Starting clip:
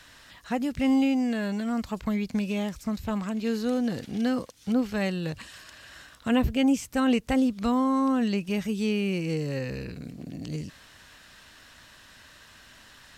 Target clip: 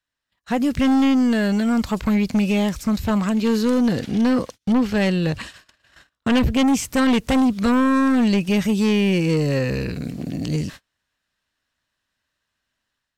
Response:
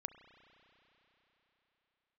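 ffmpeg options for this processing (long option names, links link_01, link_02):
-filter_complex "[0:a]asettb=1/sr,asplit=3[link_01][link_02][link_03];[link_01]atrim=end=3.924[link_04];[link_02]atrim=start=3.92:end=6.55,asetpts=PTS-STARTPTS,afade=type=in:duration=0.004:curve=qsin,afade=type=out:start_time=2.626:duration=0.004:curve=qsin,highshelf=frequency=7000:gain=-7[link_05];[link_03]atrim=start=6.546[link_06];[link_04][link_05]acrossfade=duration=0.004:curve1=hsin:curve2=qsin[link_07];[link_07][link_06]acrossfade=duration=0.004:curve1=qsin:curve2=hsin,agate=range=-37dB:threshold=-45dB:ratio=16:detection=peak,dynaudnorm=framelen=350:gausssize=3:maxgain=7dB,aeval=exprs='0.473*(cos(1*acos(clip(val(0)/0.473,-1,1)))-cos(1*PI/2))+0.133*(cos(5*acos(clip(val(0)/0.473,-1,1)))-cos(5*PI/2))':channel_layout=same,volume=-3.5dB"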